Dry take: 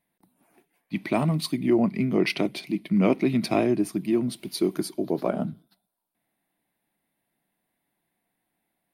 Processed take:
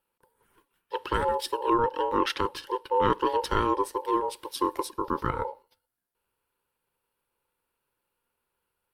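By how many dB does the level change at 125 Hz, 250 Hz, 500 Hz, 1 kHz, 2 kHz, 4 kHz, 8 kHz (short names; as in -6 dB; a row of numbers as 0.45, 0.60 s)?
-10.0, -10.0, -1.5, +9.5, -2.0, -1.0, -2.5 dB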